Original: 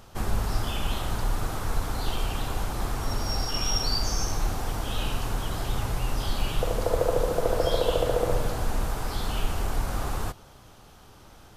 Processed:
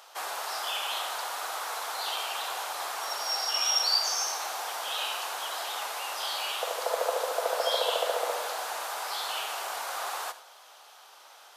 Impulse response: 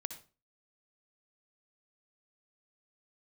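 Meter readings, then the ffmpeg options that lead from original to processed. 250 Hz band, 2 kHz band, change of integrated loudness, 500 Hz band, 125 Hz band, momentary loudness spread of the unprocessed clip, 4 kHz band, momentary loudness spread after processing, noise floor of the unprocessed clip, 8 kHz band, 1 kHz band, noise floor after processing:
under -20 dB, +3.0 dB, -1.0 dB, -4.5 dB, under -40 dB, 6 LU, +4.0 dB, 9 LU, -51 dBFS, +3.0 dB, +2.0 dB, -53 dBFS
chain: -filter_complex "[0:a]highpass=f=630:w=0.5412,highpass=f=630:w=1.3066,equalizer=f=3800:w=1.5:g=2.5,asplit=2[s0][s1];[1:a]atrim=start_sample=2205[s2];[s1][s2]afir=irnorm=-1:irlink=0,volume=1.19[s3];[s0][s3]amix=inputs=2:normalize=0,volume=0.668"

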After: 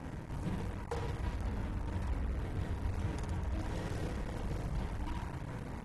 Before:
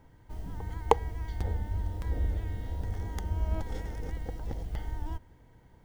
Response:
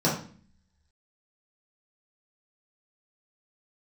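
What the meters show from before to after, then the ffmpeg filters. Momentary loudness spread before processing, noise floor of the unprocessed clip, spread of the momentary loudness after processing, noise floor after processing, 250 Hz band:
12 LU, -57 dBFS, 3 LU, -44 dBFS, +2.0 dB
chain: -filter_complex "[0:a]apsyclip=2.82,areverse,acompressor=threshold=0.02:ratio=16,areverse,bass=f=250:g=14,treble=f=4000:g=0,flanger=delay=3.6:depth=3.7:regen=39:speed=1.4:shape=sinusoidal,highpass=f=190:p=1,asoftclip=type=tanh:threshold=0.0106,equalizer=f=3100:t=o:w=0.74:g=-6,asplit=2[s0][s1];[s1]aecho=0:1:50|107.5|173.6|249.7|337.1:0.631|0.398|0.251|0.158|0.1[s2];[s0][s2]amix=inputs=2:normalize=0,acrusher=bits=7:mix=0:aa=0.5,volume=1.88" -ar 32000 -c:a aac -b:a 32k

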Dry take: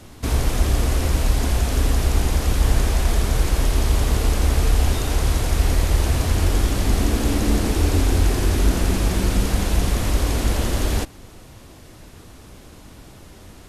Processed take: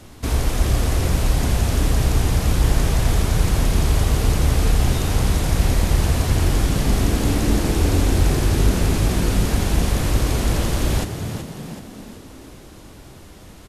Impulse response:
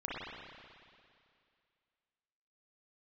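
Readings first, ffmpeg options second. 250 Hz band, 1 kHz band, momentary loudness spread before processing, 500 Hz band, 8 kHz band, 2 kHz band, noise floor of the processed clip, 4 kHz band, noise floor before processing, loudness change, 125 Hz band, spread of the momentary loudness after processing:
+2.0 dB, +1.0 dB, 2 LU, +1.0 dB, +0.5 dB, +0.5 dB, -42 dBFS, +0.5 dB, -44 dBFS, +1.0 dB, +2.0 dB, 5 LU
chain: -filter_complex "[0:a]asplit=7[s0][s1][s2][s3][s4][s5][s6];[s1]adelay=376,afreqshift=55,volume=0.355[s7];[s2]adelay=752,afreqshift=110,volume=0.182[s8];[s3]adelay=1128,afreqshift=165,volume=0.0923[s9];[s4]adelay=1504,afreqshift=220,volume=0.0473[s10];[s5]adelay=1880,afreqshift=275,volume=0.024[s11];[s6]adelay=2256,afreqshift=330,volume=0.0123[s12];[s0][s7][s8][s9][s10][s11][s12]amix=inputs=7:normalize=0"

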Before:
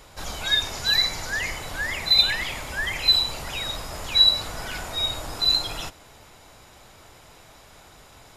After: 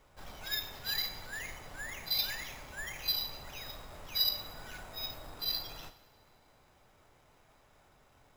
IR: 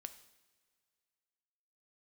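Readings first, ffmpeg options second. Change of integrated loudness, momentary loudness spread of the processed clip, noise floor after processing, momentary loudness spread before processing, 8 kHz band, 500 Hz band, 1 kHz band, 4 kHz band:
-14.0 dB, 15 LU, -65 dBFS, 15 LU, -13.0 dB, -13.5 dB, -13.5 dB, -15.0 dB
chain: -filter_complex "[0:a]adynamicsmooth=sensitivity=3:basefreq=4000,acrusher=samples=5:mix=1:aa=0.000001[s0];[1:a]atrim=start_sample=2205[s1];[s0][s1]afir=irnorm=-1:irlink=0,volume=0.376"

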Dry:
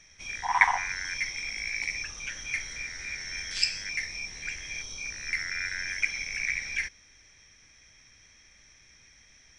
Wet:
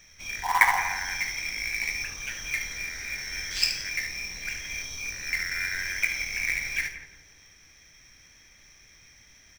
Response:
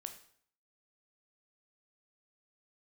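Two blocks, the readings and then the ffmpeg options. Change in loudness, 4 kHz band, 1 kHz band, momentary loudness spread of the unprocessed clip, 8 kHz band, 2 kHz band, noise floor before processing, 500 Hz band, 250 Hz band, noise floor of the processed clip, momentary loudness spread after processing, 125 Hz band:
+2.5 dB, +2.0 dB, +2.0 dB, 11 LU, +2.5 dB, +2.0 dB, -58 dBFS, +3.5 dB, +3.5 dB, -56 dBFS, 10 LU, +3.5 dB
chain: -filter_complex "[0:a]asplit=2[s0][s1];[s1]aecho=0:1:25|51|74:0.335|0.188|0.335[s2];[s0][s2]amix=inputs=2:normalize=0,acrusher=bits=3:mode=log:mix=0:aa=0.000001,asplit=2[s3][s4];[s4]adelay=172,lowpass=f=1000:p=1,volume=0.447,asplit=2[s5][s6];[s6]adelay=172,lowpass=f=1000:p=1,volume=0.49,asplit=2[s7][s8];[s8]adelay=172,lowpass=f=1000:p=1,volume=0.49,asplit=2[s9][s10];[s10]adelay=172,lowpass=f=1000:p=1,volume=0.49,asplit=2[s11][s12];[s12]adelay=172,lowpass=f=1000:p=1,volume=0.49,asplit=2[s13][s14];[s14]adelay=172,lowpass=f=1000:p=1,volume=0.49[s15];[s5][s7][s9][s11][s13][s15]amix=inputs=6:normalize=0[s16];[s3][s16]amix=inputs=2:normalize=0,volume=1.12"

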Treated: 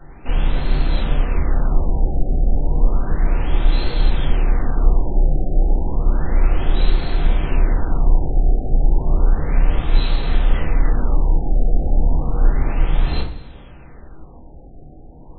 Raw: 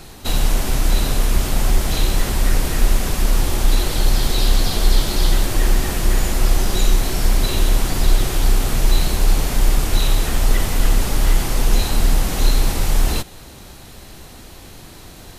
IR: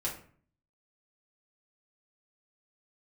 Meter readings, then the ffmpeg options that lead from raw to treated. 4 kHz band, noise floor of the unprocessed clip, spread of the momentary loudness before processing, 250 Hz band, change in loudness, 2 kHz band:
-11.0 dB, -40 dBFS, 20 LU, -1.5 dB, -1.5 dB, -6.0 dB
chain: -filter_complex "[1:a]atrim=start_sample=2205,asetrate=39249,aresample=44100[s0];[0:a][s0]afir=irnorm=-1:irlink=0,afftfilt=real='re*lt(b*sr/1024,790*pow(4400/790,0.5+0.5*sin(2*PI*0.32*pts/sr)))':imag='im*lt(b*sr/1024,790*pow(4400/790,0.5+0.5*sin(2*PI*0.32*pts/sr)))':win_size=1024:overlap=0.75,volume=0.447"

